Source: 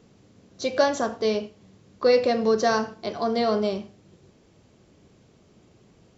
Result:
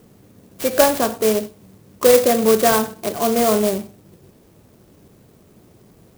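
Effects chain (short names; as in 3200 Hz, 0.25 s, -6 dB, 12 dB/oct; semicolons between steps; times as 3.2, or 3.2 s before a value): clock jitter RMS 0.088 ms; gain +6.5 dB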